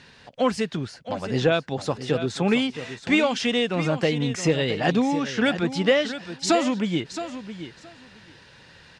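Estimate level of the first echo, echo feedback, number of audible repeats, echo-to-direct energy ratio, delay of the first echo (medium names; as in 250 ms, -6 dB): -11.5 dB, 16%, 2, -11.5 dB, 669 ms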